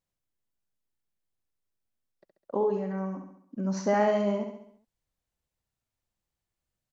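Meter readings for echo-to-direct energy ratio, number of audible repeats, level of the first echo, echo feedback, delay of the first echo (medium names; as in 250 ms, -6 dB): -5.0 dB, 5, -6.5 dB, 51%, 68 ms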